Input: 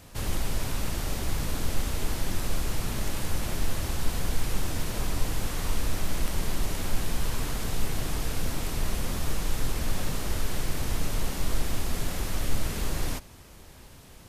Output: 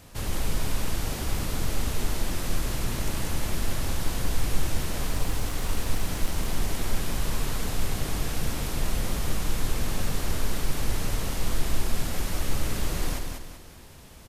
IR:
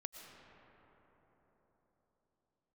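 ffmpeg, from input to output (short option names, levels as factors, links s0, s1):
-filter_complex "[0:a]asettb=1/sr,asplit=3[s0][s1][s2];[s0]atrim=end=5.094[s3];[s1]atrim=start=5.09:end=6.53,asetpts=PTS-STARTPTS,afade=t=in:d=0.004:c=qsin,afade=t=out:st=1.436:d=0.004:c=qsin,aeval=exprs='sgn(val(0))*max(abs(val(0))-0.00708,0)':c=same[s4];[s2]atrim=start=6.526[s5];[s3][s4]acrossfade=d=0.004:c1=hsin:c2=qsin[s6];[s6][s5]acrossfade=d=0.004:c1=qsin:c2=hsin,aecho=1:1:192|384|576|768|960:0.562|0.214|0.0812|0.0309|0.0117"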